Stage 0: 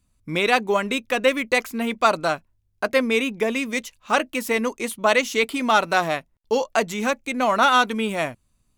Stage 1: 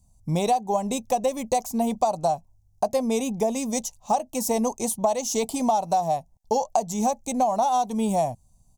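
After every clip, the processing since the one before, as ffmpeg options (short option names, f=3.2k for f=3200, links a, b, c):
-af "firequalizer=gain_entry='entry(170,0);entry(300,-12);entry(490,-8);entry(770,6);entry(1400,-29);entry(6000,1);entry(11000,-4)':delay=0.05:min_phase=1,acompressor=threshold=-27dB:ratio=10,volume=8dB"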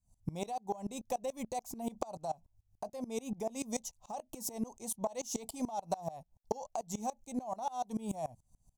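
-af "acompressor=threshold=-26dB:ratio=6,aeval=exprs='val(0)*pow(10,-23*if(lt(mod(-6.9*n/s,1),2*abs(-6.9)/1000),1-mod(-6.9*n/s,1)/(2*abs(-6.9)/1000),(mod(-6.9*n/s,1)-2*abs(-6.9)/1000)/(1-2*abs(-6.9)/1000))/20)':c=same,volume=-2dB"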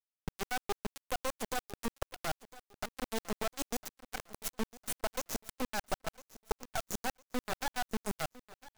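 -af "acrusher=bits=3:dc=4:mix=0:aa=0.000001,aecho=1:1:1005|2010|3015:0.119|0.0404|0.0137,volume=3dB"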